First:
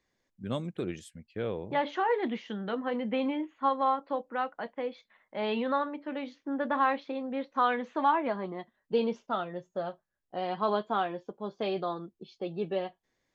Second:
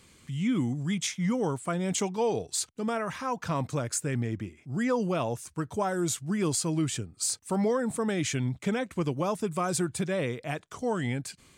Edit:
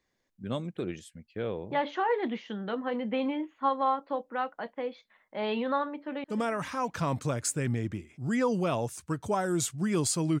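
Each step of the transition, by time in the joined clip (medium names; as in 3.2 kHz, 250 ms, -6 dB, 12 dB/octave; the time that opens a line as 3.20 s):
first
5.98–6.24 s: echo throw 220 ms, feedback 70%, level -15.5 dB
6.24 s: go over to second from 2.72 s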